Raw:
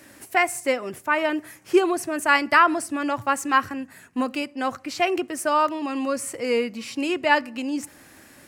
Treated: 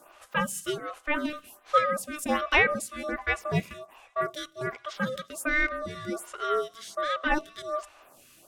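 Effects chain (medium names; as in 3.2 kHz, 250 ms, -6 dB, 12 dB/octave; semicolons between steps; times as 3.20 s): ring modulator 900 Hz; feedback echo behind a high-pass 179 ms, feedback 57%, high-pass 3.9 kHz, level -23 dB; lamp-driven phase shifter 1.3 Hz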